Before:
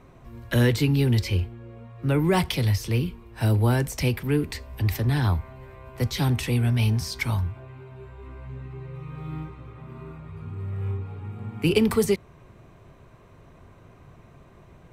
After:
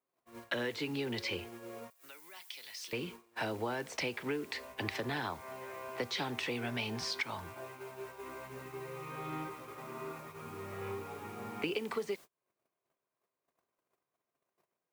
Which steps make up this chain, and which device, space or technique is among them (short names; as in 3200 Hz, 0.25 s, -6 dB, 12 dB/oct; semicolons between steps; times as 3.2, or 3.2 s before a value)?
baby monitor (BPF 400–4100 Hz; compressor 10:1, threshold -37 dBFS, peak gain reduction 19 dB; white noise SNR 20 dB; gate -51 dBFS, range -38 dB); 1.9–2.93 differentiator; gain +4 dB